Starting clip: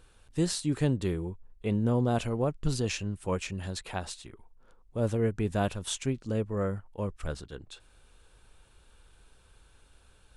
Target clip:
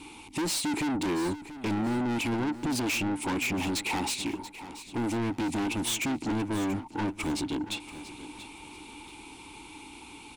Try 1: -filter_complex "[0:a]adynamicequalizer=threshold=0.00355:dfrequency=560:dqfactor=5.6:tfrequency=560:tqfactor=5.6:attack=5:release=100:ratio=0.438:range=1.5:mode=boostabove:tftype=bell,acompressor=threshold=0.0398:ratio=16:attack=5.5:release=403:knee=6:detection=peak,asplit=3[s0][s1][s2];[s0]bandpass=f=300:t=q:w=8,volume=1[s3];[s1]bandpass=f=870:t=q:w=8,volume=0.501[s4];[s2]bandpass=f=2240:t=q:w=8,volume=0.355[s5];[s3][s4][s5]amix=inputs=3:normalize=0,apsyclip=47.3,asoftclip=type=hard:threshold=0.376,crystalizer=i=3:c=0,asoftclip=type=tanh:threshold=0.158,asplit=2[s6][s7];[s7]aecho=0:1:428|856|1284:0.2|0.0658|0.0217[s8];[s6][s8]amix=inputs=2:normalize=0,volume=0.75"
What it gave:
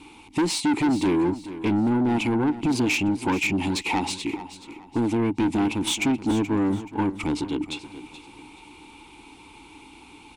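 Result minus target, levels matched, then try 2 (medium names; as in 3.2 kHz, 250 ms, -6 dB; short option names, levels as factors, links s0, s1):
echo 255 ms early; 8 kHz band -5.5 dB; saturation: distortion -6 dB
-filter_complex "[0:a]adynamicequalizer=threshold=0.00355:dfrequency=560:dqfactor=5.6:tfrequency=560:tqfactor=5.6:attack=5:release=100:ratio=0.438:range=1.5:mode=boostabove:tftype=bell,acompressor=threshold=0.0398:ratio=16:attack=5.5:release=403:knee=6:detection=peak,asplit=3[s0][s1][s2];[s0]bandpass=f=300:t=q:w=8,volume=1[s3];[s1]bandpass=f=870:t=q:w=8,volume=0.501[s4];[s2]bandpass=f=2240:t=q:w=8,volume=0.355[s5];[s3][s4][s5]amix=inputs=3:normalize=0,highshelf=f=5900:g=8,apsyclip=47.3,asoftclip=type=hard:threshold=0.376,crystalizer=i=3:c=0,asoftclip=type=tanh:threshold=0.0562,asplit=2[s6][s7];[s7]aecho=0:1:683|1366|2049:0.2|0.0658|0.0217[s8];[s6][s8]amix=inputs=2:normalize=0,volume=0.75"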